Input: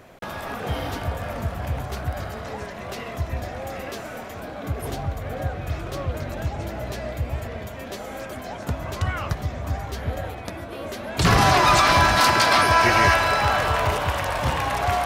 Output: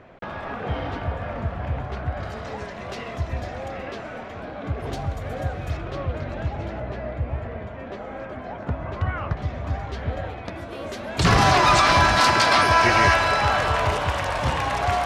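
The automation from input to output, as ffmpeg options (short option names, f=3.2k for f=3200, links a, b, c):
-af "asetnsamples=n=441:p=0,asendcmd='2.23 lowpass f 6100;3.68 lowpass f 3500;4.93 lowpass f 9100;5.77 lowpass f 3400;6.8 lowpass f 2000;9.37 lowpass f 3900;10.56 lowpass f 8200',lowpass=2.7k"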